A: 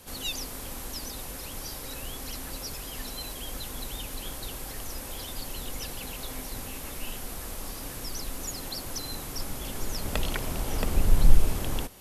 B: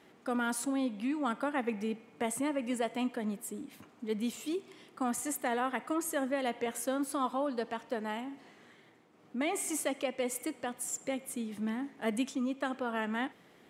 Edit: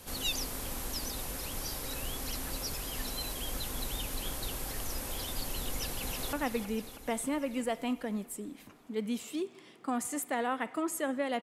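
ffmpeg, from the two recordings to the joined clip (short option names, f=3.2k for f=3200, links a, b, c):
-filter_complex "[0:a]apad=whole_dur=11.42,atrim=end=11.42,atrim=end=6.332[a];[1:a]atrim=start=1.458:end=6.55[b];[a][b]acrossfade=d=0.004:c1=hsin:c2=hsin,asplit=2[c][d];[d]afade=t=in:st=5.71:d=0.01,afade=t=out:st=6.33:d=0.01,aecho=0:1:320|640|960|1280|1600|1920|2240|2560|2880:0.398107|0.25877|0.1682|0.10933|0.0710646|0.046192|0.0300248|0.0195161|0.0126855[e];[c][e]amix=inputs=2:normalize=0"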